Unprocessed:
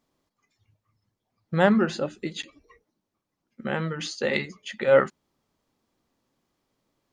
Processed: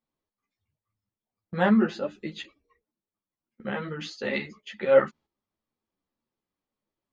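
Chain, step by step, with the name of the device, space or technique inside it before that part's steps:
string-machine ensemble chorus (string-ensemble chorus; low-pass filter 4,600 Hz 12 dB per octave)
noise gate −49 dBFS, range −10 dB

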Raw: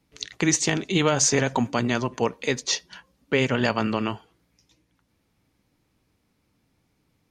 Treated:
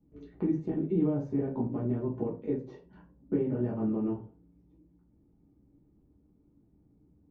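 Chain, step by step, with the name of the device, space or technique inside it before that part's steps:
television next door (downward compressor 3 to 1, threshold −32 dBFS, peak gain reduction 12 dB; low-pass filter 360 Hz 12 dB per octave; convolution reverb RT60 0.30 s, pre-delay 4 ms, DRR −6 dB)

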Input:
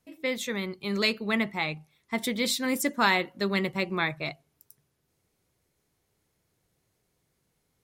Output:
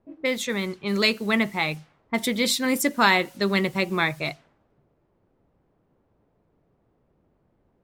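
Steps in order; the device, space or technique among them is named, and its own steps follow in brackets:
cassette deck with a dynamic noise filter (white noise bed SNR 25 dB; low-pass that shuts in the quiet parts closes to 390 Hz, open at −27.5 dBFS)
level +4.5 dB

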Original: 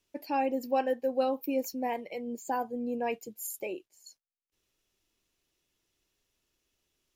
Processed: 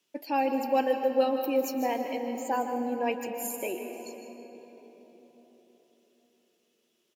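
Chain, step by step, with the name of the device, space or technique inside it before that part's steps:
PA in a hall (high-pass filter 160 Hz 24 dB per octave; parametric band 3,100 Hz +4 dB 0.4 octaves; single-tap delay 156 ms −11.5 dB; convolution reverb RT60 4.3 s, pre-delay 117 ms, DRR 6.5 dB)
level +2 dB

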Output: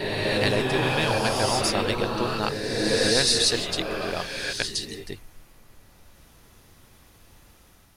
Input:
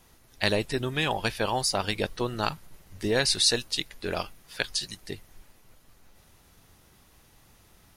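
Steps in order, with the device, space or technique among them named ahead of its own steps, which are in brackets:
reverse reverb (reversed playback; convolution reverb RT60 3.0 s, pre-delay 90 ms, DRR −2.5 dB; reversed playback)

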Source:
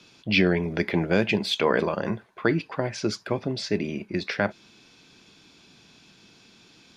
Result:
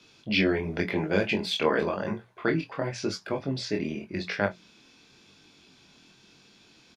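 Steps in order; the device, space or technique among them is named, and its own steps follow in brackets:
double-tracked vocal (double-tracking delay 22 ms −11 dB; chorus effect 0.92 Hz, delay 19.5 ms, depth 6.3 ms)
mains-hum notches 60/120/180 Hz

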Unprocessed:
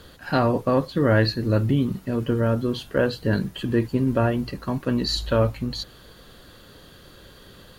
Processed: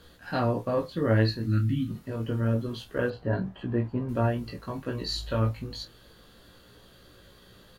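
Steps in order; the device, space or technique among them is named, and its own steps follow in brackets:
0:01.45–0:01.90: gain on a spectral selection 340–1,200 Hz −23 dB
double-tracked vocal (double-tracking delay 27 ms −10.5 dB; chorus effect 0.28 Hz, delay 16.5 ms, depth 2.2 ms)
0:03.10–0:04.09: drawn EQ curve 480 Hz 0 dB, 690 Hz +9 dB, 10,000 Hz −21 dB
level −4 dB

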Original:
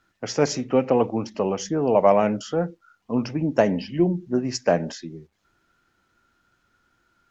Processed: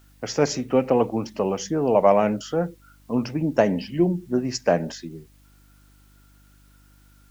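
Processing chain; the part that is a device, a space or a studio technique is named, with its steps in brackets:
video cassette with head-switching buzz (hum with harmonics 50 Hz, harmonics 6, −55 dBFS −6 dB per octave; white noise bed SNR 39 dB)

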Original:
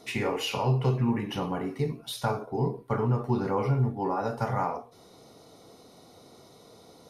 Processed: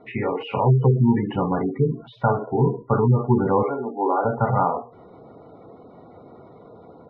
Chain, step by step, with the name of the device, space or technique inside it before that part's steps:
0:03.63–0:04.25: high-pass filter 290 Hz 24 dB per octave
gate on every frequency bin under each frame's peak −20 dB strong
action camera in a waterproof case (low-pass filter 2,100 Hz 24 dB per octave; automatic gain control gain up to 4.5 dB; level +4 dB; AAC 96 kbit/s 24,000 Hz)

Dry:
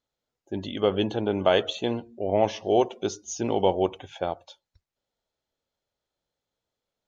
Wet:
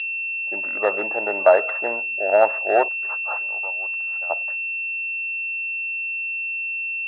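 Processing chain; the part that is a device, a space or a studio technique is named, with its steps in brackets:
0:02.88–0:04.30: first difference
toy sound module (linearly interpolated sample-rate reduction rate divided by 6×; switching amplifier with a slow clock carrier 2,700 Hz; loudspeaker in its box 600–3,900 Hz, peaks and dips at 610 Hz +9 dB, 880 Hz +5 dB, 1,300 Hz +7 dB, 1,800 Hz +8 dB, 3,500 Hz +7 dB)
level +3.5 dB

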